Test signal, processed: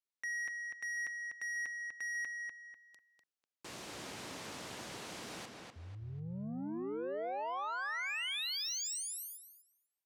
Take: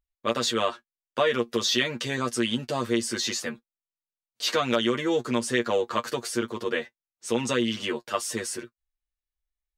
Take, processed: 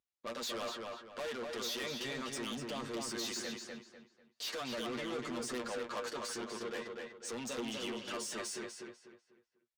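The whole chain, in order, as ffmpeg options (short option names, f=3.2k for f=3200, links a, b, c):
-filter_complex "[0:a]volume=22dB,asoftclip=hard,volume=-22dB,alimiter=level_in=2dB:limit=-24dB:level=0:latency=1:release=71,volume=-2dB,highpass=140,lowpass=8k,equalizer=f=1.5k:w=0.55:g=-2.5,asoftclip=type=tanh:threshold=-35.5dB,lowshelf=f=300:g=-4.5,asplit=2[a][b];[b]adelay=247,lowpass=f=4.1k:p=1,volume=-3dB,asplit=2[c][d];[d]adelay=247,lowpass=f=4.1k:p=1,volume=0.34,asplit=2[e][f];[f]adelay=247,lowpass=f=4.1k:p=1,volume=0.34,asplit=2[g][h];[h]adelay=247,lowpass=f=4.1k:p=1,volume=0.34[i];[c][e][g][i]amix=inputs=4:normalize=0[j];[a][j]amix=inputs=2:normalize=0,volume=-1dB"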